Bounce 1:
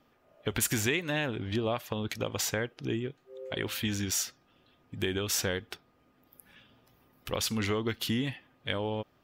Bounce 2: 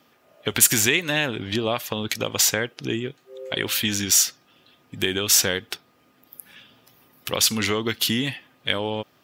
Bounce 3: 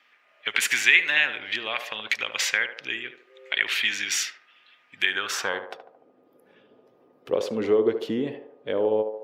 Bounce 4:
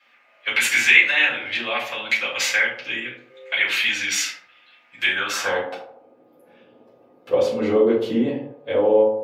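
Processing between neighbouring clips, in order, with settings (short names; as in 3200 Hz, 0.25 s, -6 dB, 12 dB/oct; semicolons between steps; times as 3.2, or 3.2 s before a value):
HPF 110 Hz; high shelf 2300 Hz +9 dB; gain +5.5 dB
band-pass sweep 2100 Hz -> 440 Hz, 5.02–6.01; narrowing echo 74 ms, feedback 59%, band-pass 610 Hz, level -7 dB; gain +7 dB
shoebox room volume 200 m³, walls furnished, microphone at 5.2 m; gain -5.5 dB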